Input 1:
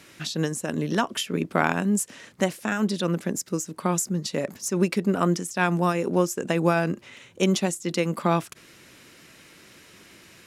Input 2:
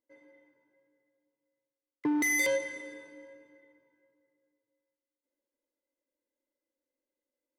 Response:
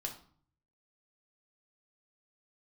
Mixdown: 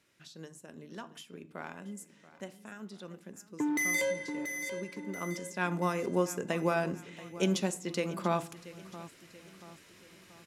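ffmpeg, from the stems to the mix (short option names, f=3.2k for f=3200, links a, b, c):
-filter_complex "[0:a]volume=-10.5dB,afade=t=in:st=5.05:d=0.77:silence=0.223872,asplit=3[a][b][c];[b]volume=-5dB[d];[c]volume=-14dB[e];[1:a]adelay=1550,volume=-2.5dB,asplit=2[f][g];[g]volume=-8dB[h];[2:a]atrim=start_sample=2205[i];[d][i]afir=irnorm=-1:irlink=0[j];[e][h]amix=inputs=2:normalize=0,aecho=0:1:682|1364|2046|2728|3410|4092|4774:1|0.48|0.23|0.111|0.0531|0.0255|0.0122[k];[a][f][j][k]amix=inputs=4:normalize=0"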